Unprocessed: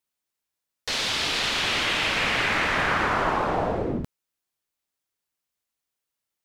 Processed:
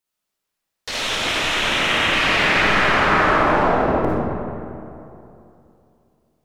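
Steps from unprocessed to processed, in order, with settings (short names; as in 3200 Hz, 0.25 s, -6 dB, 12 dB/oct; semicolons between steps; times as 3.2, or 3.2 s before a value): 0.91–2.13 bell 4600 Hz -10.5 dB 0.4 oct; digital reverb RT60 2.8 s, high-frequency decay 0.5×, pre-delay 15 ms, DRR -6.5 dB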